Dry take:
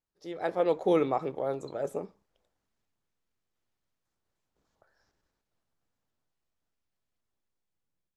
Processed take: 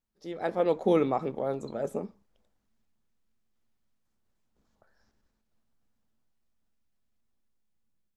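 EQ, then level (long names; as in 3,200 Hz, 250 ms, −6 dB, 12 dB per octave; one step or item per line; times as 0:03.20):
low-shelf EQ 72 Hz +10 dB
parametric band 220 Hz +12 dB 0.31 octaves
0.0 dB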